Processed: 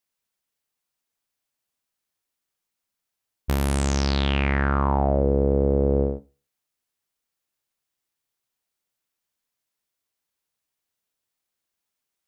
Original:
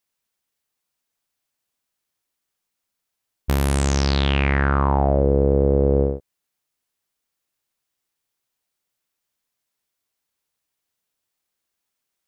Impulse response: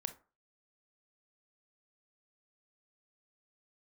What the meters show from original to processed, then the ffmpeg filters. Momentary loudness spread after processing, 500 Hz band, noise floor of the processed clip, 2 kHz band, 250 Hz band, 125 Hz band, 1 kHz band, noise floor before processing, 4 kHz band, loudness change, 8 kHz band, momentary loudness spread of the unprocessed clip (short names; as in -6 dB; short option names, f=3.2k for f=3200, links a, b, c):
7 LU, -3.0 dB, -84 dBFS, -3.5 dB, -2.0 dB, -3.5 dB, -2.5 dB, -81 dBFS, -3.0 dB, -3.0 dB, -3.0 dB, 7 LU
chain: -filter_complex "[0:a]asplit=2[a][b];[1:a]atrim=start_sample=2205[c];[b][c]afir=irnorm=-1:irlink=0,volume=-4dB[d];[a][d]amix=inputs=2:normalize=0,volume=-6.5dB"